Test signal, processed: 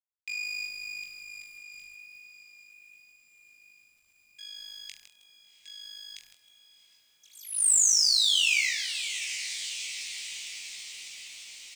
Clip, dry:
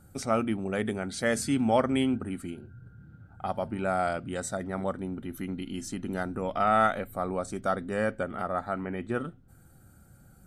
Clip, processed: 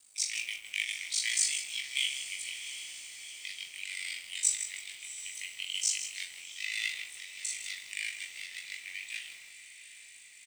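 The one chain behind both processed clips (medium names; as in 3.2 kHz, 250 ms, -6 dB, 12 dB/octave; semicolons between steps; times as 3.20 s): partial rectifier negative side -7 dB; steep low-pass 8.8 kHz 48 dB/octave; ring modulator 26 Hz; tilt EQ +2.5 dB/octave; echo that smears into a reverb 748 ms, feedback 61%, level -14.5 dB; in parallel at +2 dB: gain riding within 5 dB 0.5 s; on the sum: steep high-pass 2.1 kHz 72 dB/octave; on a send: reverse bouncing-ball echo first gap 20 ms, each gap 1.15×, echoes 5; on the sum: companded quantiser 6-bit; bit-crushed delay 158 ms, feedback 35%, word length 8-bit, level -10 dB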